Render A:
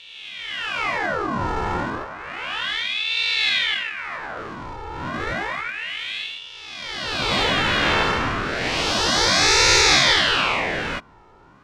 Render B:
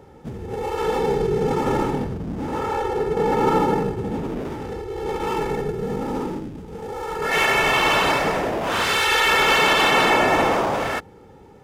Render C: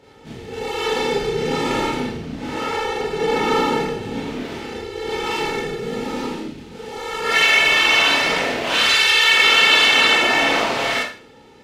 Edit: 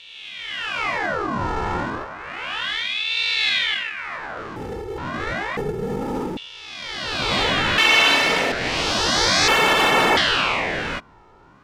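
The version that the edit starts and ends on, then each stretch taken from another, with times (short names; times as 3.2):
A
4.56–4.98 from B
5.57–6.37 from B
7.78–8.52 from C
9.48–10.17 from B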